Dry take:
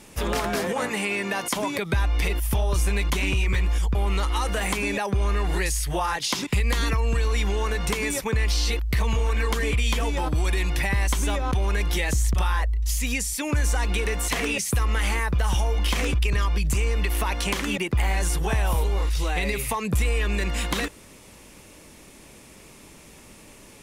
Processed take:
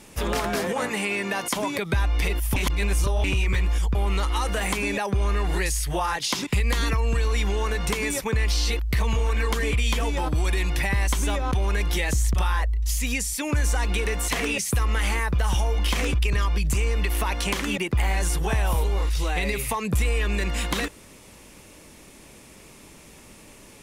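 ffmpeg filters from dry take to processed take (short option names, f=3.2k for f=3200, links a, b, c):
-filter_complex "[0:a]asplit=3[a][b][c];[a]atrim=end=2.562[d];[b]atrim=start=2.558:end=3.242,asetpts=PTS-STARTPTS,areverse[e];[c]atrim=start=3.238[f];[d][e]acrossfade=d=0.004:c1=hsin:c2=hsin[g];[g][f]acrossfade=d=0.004:c1=hsin:c2=hsin"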